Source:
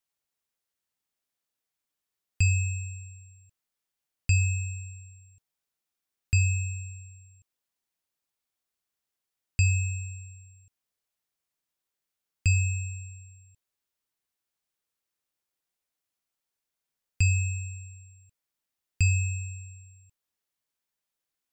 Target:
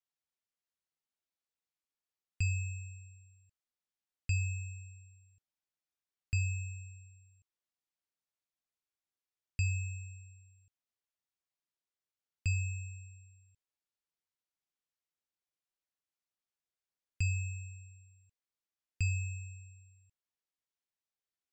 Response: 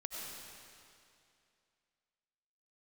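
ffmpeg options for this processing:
-af "lowpass=7500,volume=0.355"

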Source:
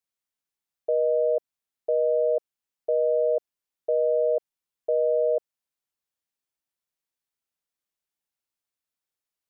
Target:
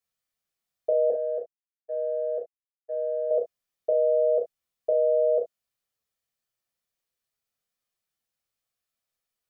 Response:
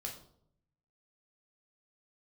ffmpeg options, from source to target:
-filter_complex "[0:a]asettb=1/sr,asplit=3[s0][s1][s2];[s0]atrim=end=1.104[s3];[s1]atrim=start=1.1:end=3.31,asetpts=PTS-STARTPTS,afade=t=in:d=0.004:c=qsin,afade=t=out:st=2.206:d=0.004:c=qsin,agate=range=0.0224:threshold=0.158:ratio=3:detection=peak[s4];[s2]atrim=start=3.306[s5];[s3][s4]acrossfade=d=0.004:c1=hsin:c2=qsin[s6];[s6][s5]acrossfade=d=0.004:c1=qsin:c2=hsin[s7];[1:a]atrim=start_sample=2205,atrim=end_sample=3528[s8];[s7][s8]afir=irnorm=-1:irlink=0,volume=1.68"

